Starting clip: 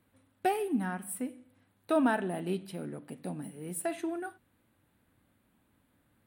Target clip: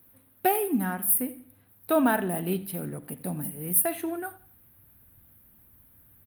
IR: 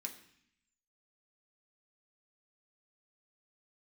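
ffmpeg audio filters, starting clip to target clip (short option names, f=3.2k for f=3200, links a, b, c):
-filter_complex "[0:a]asplit=2[a][b];[b]aecho=0:1:85|170|255:0.112|0.0393|0.0137[c];[a][c]amix=inputs=2:normalize=0,aexciter=amount=10.9:drive=5:freq=11k,asubboost=boost=3.5:cutoff=140,volume=5dB" -ar 48000 -c:a libopus -b:a 32k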